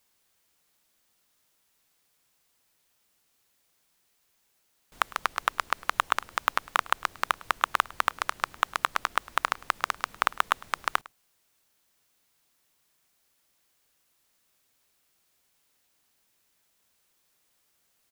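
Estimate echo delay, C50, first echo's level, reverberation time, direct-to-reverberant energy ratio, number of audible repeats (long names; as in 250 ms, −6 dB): 105 ms, no reverb audible, −22.0 dB, no reverb audible, no reverb audible, 1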